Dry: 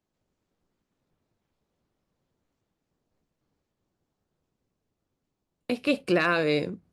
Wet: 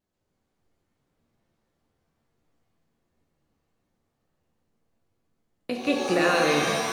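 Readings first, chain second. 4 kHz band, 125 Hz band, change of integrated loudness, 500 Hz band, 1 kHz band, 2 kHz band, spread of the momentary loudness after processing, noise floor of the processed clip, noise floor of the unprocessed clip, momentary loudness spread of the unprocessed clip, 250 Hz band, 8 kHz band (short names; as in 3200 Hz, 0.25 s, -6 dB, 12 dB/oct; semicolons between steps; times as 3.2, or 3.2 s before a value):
+5.5 dB, -0.5 dB, +2.5 dB, +2.5 dB, +6.0 dB, +2.0 dB, 9 LU, -77 dBFS, -83 dBFS, 10 LU, +1.0 dB, +17.5 dB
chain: vibrato 1.3 Hz 33 cents; shimmer reverb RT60 1.7 s, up +7 st, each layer -2 dB, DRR 1 dB; gain -2 dB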